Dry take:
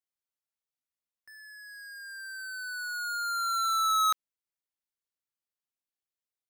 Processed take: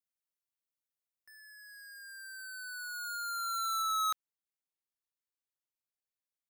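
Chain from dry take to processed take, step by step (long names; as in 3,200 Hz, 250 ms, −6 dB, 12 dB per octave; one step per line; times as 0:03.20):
high-shelf EQ 8,500 Hz +7.5 dB, from 0:03.82 +2.5 dB
level −6.5 dB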